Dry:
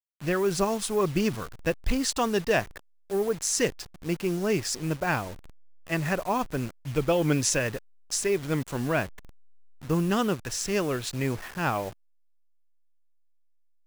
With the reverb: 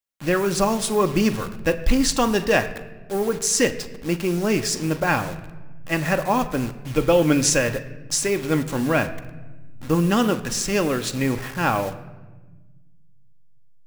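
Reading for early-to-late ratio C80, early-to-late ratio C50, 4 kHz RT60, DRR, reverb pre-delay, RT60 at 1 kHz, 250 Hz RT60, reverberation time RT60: 15.0 dB, 13.5 dB, 0.80 s, 7.0 dB, 4 ms, 1.1 s, 2.1 s, 1.3 s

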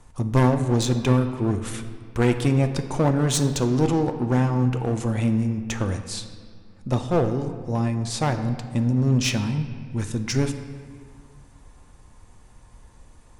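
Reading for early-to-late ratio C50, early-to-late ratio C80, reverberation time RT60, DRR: 9.5 dB, 10.5 dB, 2.1 s, 7.0 dB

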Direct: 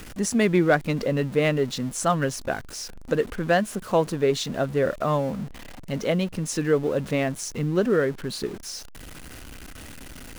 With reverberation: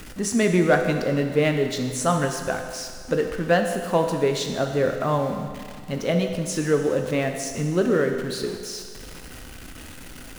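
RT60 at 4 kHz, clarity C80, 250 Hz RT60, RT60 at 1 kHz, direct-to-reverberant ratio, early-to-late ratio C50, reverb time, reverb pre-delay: 1.8 s, 7.0 dB, 1.8 s, 1.8 s, 4.0 dB, 6.0 dB, 1.8 s, 8 ms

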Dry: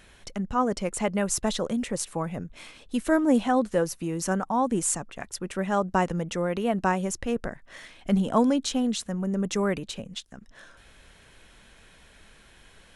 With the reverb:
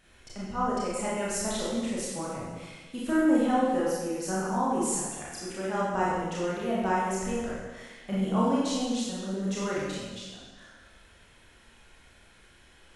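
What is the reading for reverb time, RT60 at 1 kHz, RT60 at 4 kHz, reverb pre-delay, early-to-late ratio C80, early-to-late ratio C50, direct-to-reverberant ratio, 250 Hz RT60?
1.3 s, 1.3 s, 1.2 s, 26 ms, 0.5 dB, -2.0 dB, -7.0 dB, 1.3 s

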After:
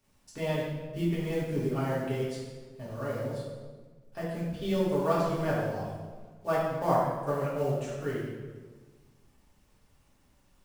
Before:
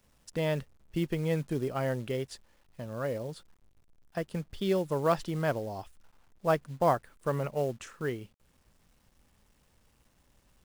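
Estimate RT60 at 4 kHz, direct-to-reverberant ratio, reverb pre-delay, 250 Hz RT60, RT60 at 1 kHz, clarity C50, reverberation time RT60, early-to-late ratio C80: 1.0 s, -8.0 dB, 3 ms, 1.7 s, 1.3 s, 0.0 dB, 1.4 s, 2.5 dB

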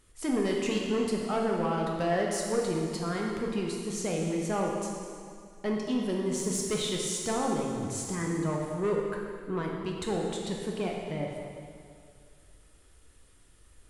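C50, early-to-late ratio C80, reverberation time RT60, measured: 1.0 dB, 2.5 dB, 2.2 s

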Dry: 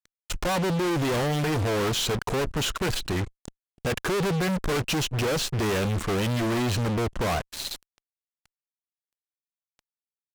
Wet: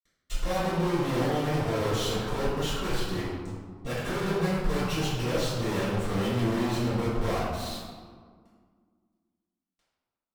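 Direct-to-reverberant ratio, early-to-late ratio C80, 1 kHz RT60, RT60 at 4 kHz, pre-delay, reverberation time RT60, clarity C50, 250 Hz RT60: -14.0 dB, 1.0 dB, 1.8 s, 0.90 s, 3 ms, 1.8 s, -2.0 dB, 2.6 s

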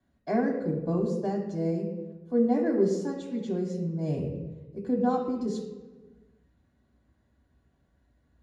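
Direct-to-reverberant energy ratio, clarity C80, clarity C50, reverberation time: -3.0 dB, 6.0 dB, 4.0 dB, 1.3 s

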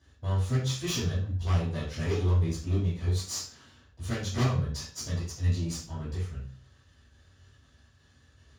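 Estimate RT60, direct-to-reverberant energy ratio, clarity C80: 0.45 s, -12.5 dB, 9.5 dB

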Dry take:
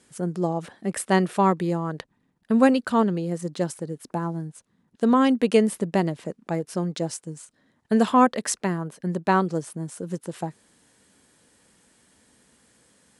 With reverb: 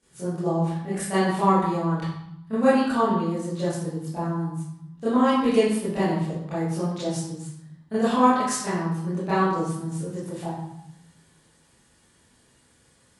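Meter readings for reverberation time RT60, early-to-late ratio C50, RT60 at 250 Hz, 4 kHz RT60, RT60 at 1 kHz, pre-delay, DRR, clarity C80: 0.80 s, -1.0 dB, 1.2 s, 0.70 s, 0.85 s, 22 ms, -14.0 dB, 3.5 dB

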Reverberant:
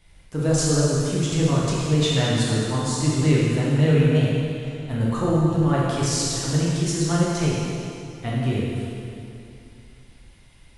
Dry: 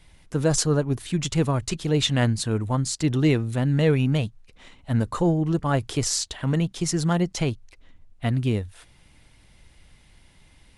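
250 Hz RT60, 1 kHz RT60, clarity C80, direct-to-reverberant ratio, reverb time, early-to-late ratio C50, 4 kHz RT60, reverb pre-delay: 2.7 s, 2.6 s, -1.0 dB, -6.5 dB, 2.6 s, -3.0 dB, 2.4 s, 5 ms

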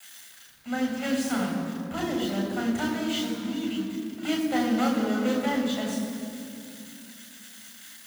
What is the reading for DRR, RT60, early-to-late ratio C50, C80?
-1.0 dB, 2.6 s, 3.0 dB, 4.5 dB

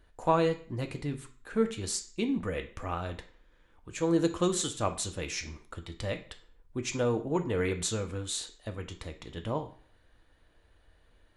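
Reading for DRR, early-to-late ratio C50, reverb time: 4.0 dB, 12.5 dB, 0.45 s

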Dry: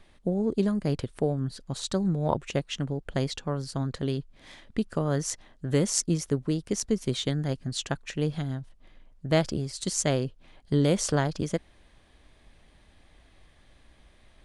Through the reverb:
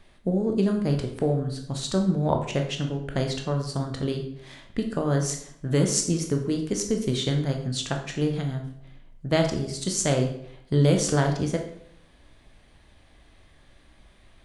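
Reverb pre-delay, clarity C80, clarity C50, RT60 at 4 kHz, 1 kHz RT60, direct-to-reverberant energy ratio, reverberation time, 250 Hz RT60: 14 ms, 11.0 dB, 8.0 dB, 0.50 s, 0.65 s, 3.0 dB, 0.70 s, 0.75 s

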